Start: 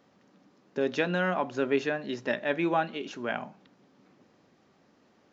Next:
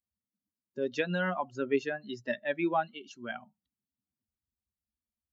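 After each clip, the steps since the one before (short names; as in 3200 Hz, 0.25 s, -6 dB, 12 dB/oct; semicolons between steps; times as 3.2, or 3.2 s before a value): per-bin expansion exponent 2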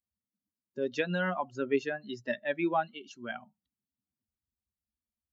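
nothing audible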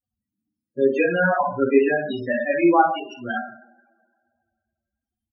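echo 99 ms -17 dB; two-slope reverb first 0.55 s, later 2.1 s, from -24 dB, DRR -5 dB; loudest bins only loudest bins 16; gain +6.5 dB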